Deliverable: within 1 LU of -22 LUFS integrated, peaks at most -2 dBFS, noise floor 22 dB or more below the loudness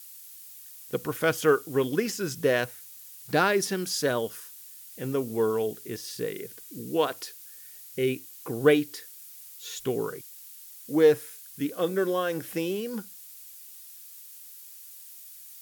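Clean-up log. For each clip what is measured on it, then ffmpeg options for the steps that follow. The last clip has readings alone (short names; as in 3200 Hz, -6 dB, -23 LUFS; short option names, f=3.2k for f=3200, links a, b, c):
noise floor -47 dBFS; noise floor target -50 dBFS; loudness -27.5 LUFS; peak -9.0 dBFS; loudness target -22.0 LUFS
-> -af "afftdn=nr=6:nf=-47"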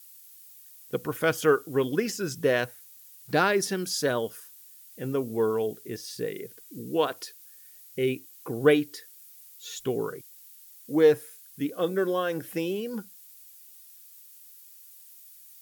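noise floor -51 dBFS; loudness -27.5 LUFS; peak -9.0 dBFS; loudness target -22.0 LUFS
-> -af "volume=5.5dB"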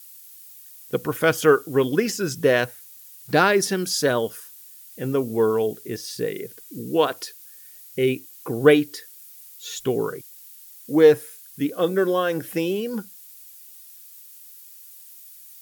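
loudness -22.0 LUFS; peak -3.5 dBFS; noise floor -46 dBFS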